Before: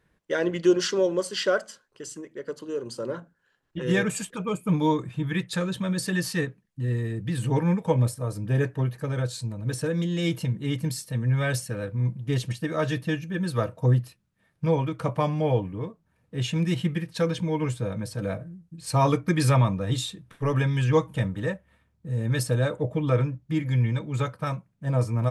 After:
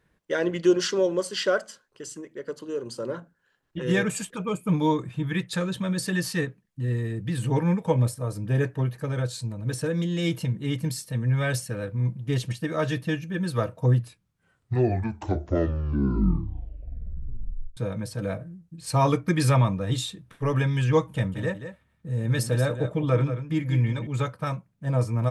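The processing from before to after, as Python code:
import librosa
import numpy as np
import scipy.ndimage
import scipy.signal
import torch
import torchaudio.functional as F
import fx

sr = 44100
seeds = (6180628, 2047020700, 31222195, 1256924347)

y = fx.echo_single(x, sr, ms=181, db=-10.0, at=(21.12, 24.07))
y = fx.edit(y, sr, fx.tape_stop(start_s=13.91, length_s=3.86), tone=tone)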